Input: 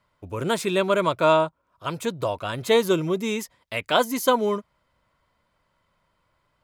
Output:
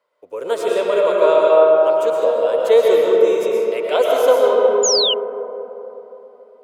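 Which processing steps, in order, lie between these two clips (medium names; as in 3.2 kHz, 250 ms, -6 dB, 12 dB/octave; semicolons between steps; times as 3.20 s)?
resonant high-pass 480 Hz, resonance Q 4.8; algorithmic reverb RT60 3.6 s, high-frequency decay 0.4×, pre-delay 80 ms, DRR -3.5 dB; painted sound fall, 4.83–5.14 s, 2.8–7.2 kHz -12 dBFS; trim -5 dB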